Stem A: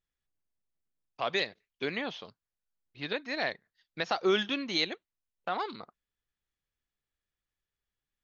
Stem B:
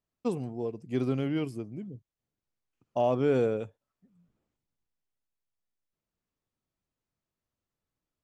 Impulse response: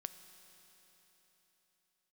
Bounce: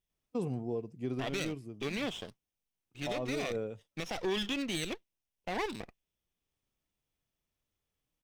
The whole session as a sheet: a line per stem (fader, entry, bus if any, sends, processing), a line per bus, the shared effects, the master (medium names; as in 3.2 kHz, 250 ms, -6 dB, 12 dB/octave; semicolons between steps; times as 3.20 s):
+2.0 dB, 0.00 s, no send, comb filter that takes the minimum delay 0.35 ms
+0.5 dB, 0.10 s, no send, harmonic-percussive split percussive -5 dB; auto duck -7 dB, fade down 0.45 s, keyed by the first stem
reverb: none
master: peak limiter -25.5 dBFS, peak gain reduction 12 dB